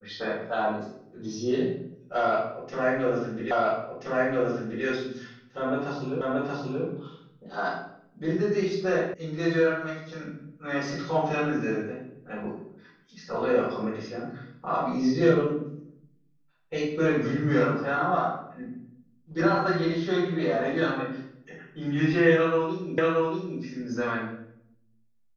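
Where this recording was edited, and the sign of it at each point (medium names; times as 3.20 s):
3.51 s: repeat of the last 1.33 s
6.21 s: repeat of the last 0.63 s
9.14 s: sound stops dead
22.98 s: repeat of the last 0.63 s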